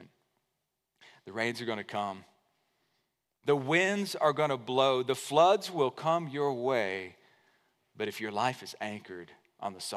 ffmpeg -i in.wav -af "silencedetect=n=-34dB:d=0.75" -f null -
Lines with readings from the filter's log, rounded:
silence_start: 0.00
silence_end: 1.28 | silence_duration: 1.28
silence_start: 2.13
silence_end: 3.48 | silence_duration: 1.35
silence_start: 7.07
silence_end: 8.00 | silence_duration: 0.93